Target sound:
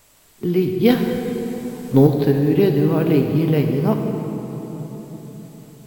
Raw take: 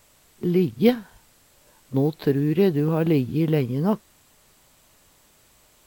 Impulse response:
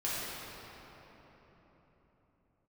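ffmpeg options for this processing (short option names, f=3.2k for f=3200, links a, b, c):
-filter_complex "[0:a]asettb=1/sr,asplit=3[a][b][c];[a]atrim=end=0.904[d];[b]atrim=start=0.9:end=2.07,asetpts=PTS-STARTPTS,afade=t=in:d=0.004:c=qsin,afade=t=out:st=1.166:d=0.004:c=qsin,acontrast=87[e];[c]atrim=start=2.066[f];[d][e]acrossfade=d=0.004:c1=hsin:c2=qsin[g];[g][f]acrossfade=d=0.004:c1=qsin:c2=hsin,asplit=2[h][i];[1:a]atrim=start_sample=2205,highshelf=f=6.5k:g=7.5[j];[i][j]afir=irnorm=-1:irlink=0,volume=-8dB[k];[h][k]amix=inputs=2:normalize=0"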